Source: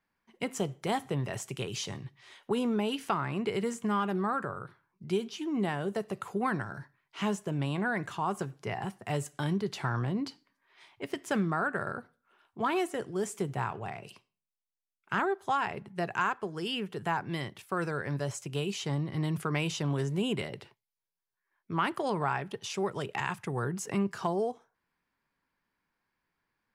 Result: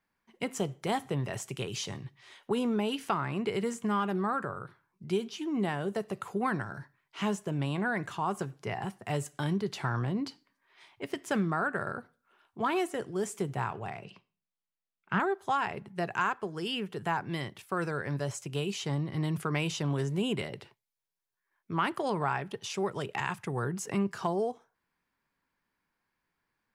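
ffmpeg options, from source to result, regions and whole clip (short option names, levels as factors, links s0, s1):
-filter_complex "[0:a]asettb=1/sr,asplit=3[s0][s1][s2];[s0]atrim=end=14.044[s3];[s1]atrim=start=14.04:end=15.2,asetpts=PTS-STARTPTS,afade=t=in:d=0.004:c=qsin,afade=t=out:st=1.156:d=0.004:c=qsin,lowpass=3600,equalizer=f=180:t=o:w=0.41:g=8.5[s4];[s2]atrim=start=15.196[s5];[s3][s4]acrossfade=d=0.004:c1=hsin:c2=qsin[s6];[s6][s5]acrossfade=d=0.004:c1=qsin:c2=hsin"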